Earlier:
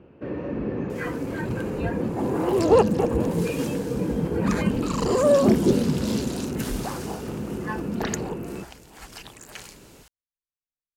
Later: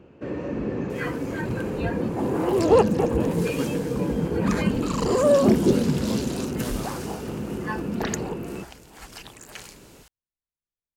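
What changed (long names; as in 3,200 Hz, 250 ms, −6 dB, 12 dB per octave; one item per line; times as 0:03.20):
speech +7.5 dB
first sound: remove high-frequency loss of the air 180 metres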